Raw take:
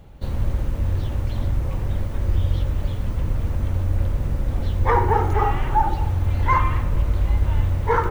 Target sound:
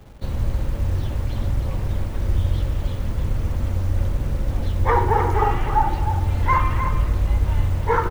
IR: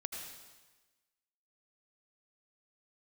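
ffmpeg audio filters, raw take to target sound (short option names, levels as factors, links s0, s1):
-filter_complex "[0:a]acrossover=split=130[s0][s1];[s0]acrusher=bits=7:mix=0:aa=0.000001[s2];[s1]aecho=1:1:307:0.398[s3];[s2][s3]amix=inputs=2:normalize=0"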